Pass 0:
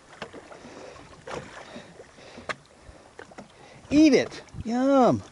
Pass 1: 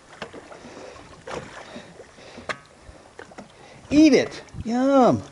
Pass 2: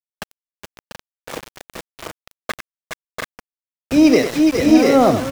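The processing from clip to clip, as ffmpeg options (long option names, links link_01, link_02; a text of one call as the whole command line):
ffmpeg -i in.wav -af "bandreject=frequency=140.6:width_type=h:width=4,bandreject=frequency=281.2:width_type=h:width=4,bandreject=frequency=421.8:width_type=h:width=4,bandreject=frequency=562.4:width_type=h:width=4,bandreject=frequency=703:width_type=h:width=4,bandreject=frequency=843.6:width_type=h:width=4,bandreject=frequency=984.2:width_type=h:width=4,bandreject=frequency=1124.8:width_type=h:width=4,bandreject=frequency=1265.4:width_type=h:width=4,bandreject=frequency=1406:width_type=h:width=4,bandreject=frequency=1546.6:width_type=h:width=4,bandreject=frequency=1687.2:width_type=h:width=4,bandreject=frequency=1827.8:width_type=h:width=4,bandreject=frequency=1968.4:width_type=h:width=4,bandreject=frequency=2109:width_type=h:width=4,bandreject=frequency=2249.6:width_type=h:width=4,bandreject=frequency=2390.2:width_type=h:width=4,bandreject=frequency=2530.8:width_type=h:width=4,bandreject=frequency=2671.4:width_type=h:width=4,bandreject=frequency=2812:width_type=h:width=4,bandreject=frequency=2952.6:width_type=h:width=4,volume=3dB" out.wav
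ffmpeg -i in.wav -af "aeval=exprs='0.596*(cos(1*acos(clip(val(0)/0.596,-1,1)))-cos(1*PI/2))+0.0211*(cos(5*acos(clip(val(0)/0.596,-1,1)))-cos(5*PI/2))':channel_layout=same,aecho=1:1:94|415|421|691|729:0.355|0.398|0.422|0.631|0.631,aeval=exprs='val(0)*gte(abs(val(0)),0.0473)':channel_layout=same,volume=2dB" out.wav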